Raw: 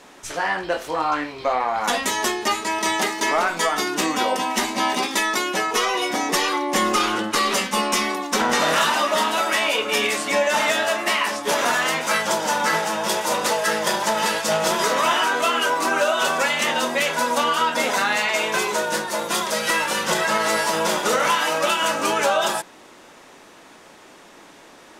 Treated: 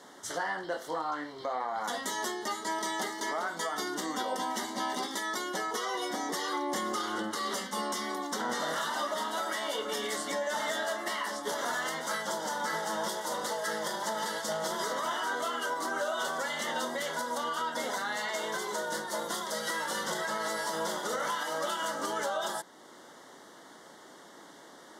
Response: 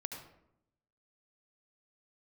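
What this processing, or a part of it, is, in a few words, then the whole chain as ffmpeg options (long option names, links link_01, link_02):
PA system with an anti-feedback notch: -af "highpass=130,asuperstop=centerf=2500:order=4:qfactor=2.7,alimiter=limit=-18dB:level=0:latency=1:release=480,volume=-5dB"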